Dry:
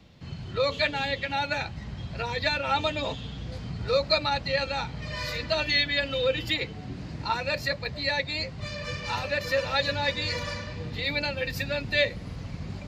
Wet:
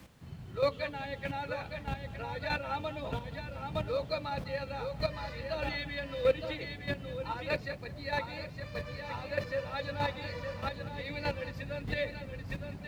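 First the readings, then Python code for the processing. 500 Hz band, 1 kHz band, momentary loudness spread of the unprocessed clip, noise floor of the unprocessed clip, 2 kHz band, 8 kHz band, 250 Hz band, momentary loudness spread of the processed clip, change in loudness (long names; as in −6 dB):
−5.0 dB, −6.5 dB, 12 LU, −40 dBFS, −10.0 dB, below −10 dB, −5.0 dB, 8 LU, −8.0 dB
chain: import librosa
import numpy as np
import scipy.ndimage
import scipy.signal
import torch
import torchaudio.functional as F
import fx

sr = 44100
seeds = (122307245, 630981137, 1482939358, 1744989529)

p1 = fx.quant_companded(x, sr, bits=4)
p2 = x + (p1 * librosa.db_to_amplitude(-7.5))
p3 = fx.dmg_noise_colour(p2, sr, seeds[0], colour='white', level_db=-46.0)
p4 = p3 + fx.echo_single(p3, sr, ms=915, db=-6.0, dry=0)
p5 = fx.chopper(p4, sr, hz=1.6, depth_pct=60, duty_pct=10)
p6 = fx.lowpass(p5, sr, hz=1400.0, slope=6)
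p7 = p6 + 10.0 ** (-16.0 / 20.0) * np.pad(p6, (int(197 * sr / 1000.0), 0))[:len(p6)]
y = p7 * librosa.db_to_amplitude(-3.0)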